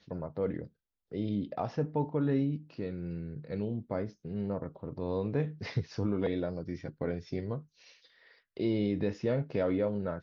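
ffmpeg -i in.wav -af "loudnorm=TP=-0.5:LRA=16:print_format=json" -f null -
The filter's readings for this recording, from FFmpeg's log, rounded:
"input_i" : "-33.8",
"input_tp" : "-18.6",
"input_lra" : "1.7",
"input_thresh" : "-44.4",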